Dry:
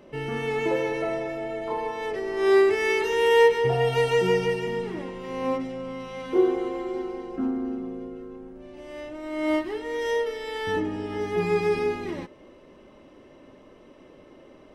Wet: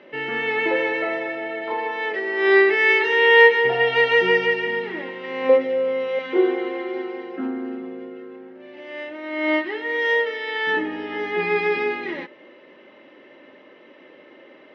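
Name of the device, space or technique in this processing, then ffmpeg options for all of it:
phone earpiece: -filter_complex "[0:a]asettb=1/sr,asplit=3[link_01][link_02][link_03];[link_01]atrim=end=5.494[link_04];[link_02]atrim=start=5.49:end=6.19,asetpts=PTS-STARTPTS,afade=type=in:duration=0.004:curve=qsin,afade=type=out:start_time=0.696:duration=0.004:curve=qsin,equalizer=frequency=490:width=3.1:gain=13.5[link_05];[link_03]atrim=start=6.186[link_06];[link_04][link_05]acrossfade=duration=0.004:curve1=hsin:curve2=qsin[link_07];[link_07][link_06]acrossfade=duration=0.004:curve1=qsin:curve2=hsin,highpass=390,equalizer=frequency=430:width_type=q:width=4:gain=-4,equalizer=frequency=690:width_type=q:width=4:gain=-6,equalizer=frequency=1100:width_type=q:width=4:gain=-7,equalizer=frequency=1900:width_type=q:width=4:gain=7,lowpass=frequency=3800:width=0.5412,lowpass=frequency=3800:width=1.3066,volume=7.5dB"

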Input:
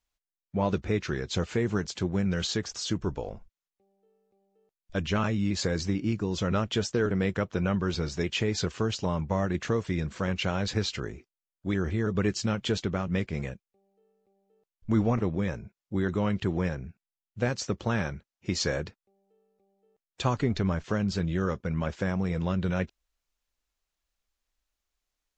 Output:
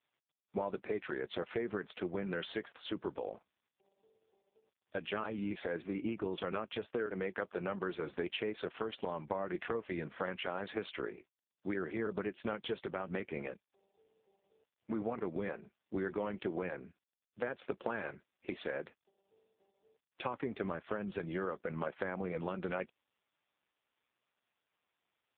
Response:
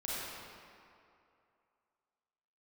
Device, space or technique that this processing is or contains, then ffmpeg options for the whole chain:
voicemail: -af "highpass=340,lowpass=3100,acompressor=threshold=-33dB:ratio=10,volume=1.5dB" -ar 8000 -c:a libopencore_amrnb -b:a 4750

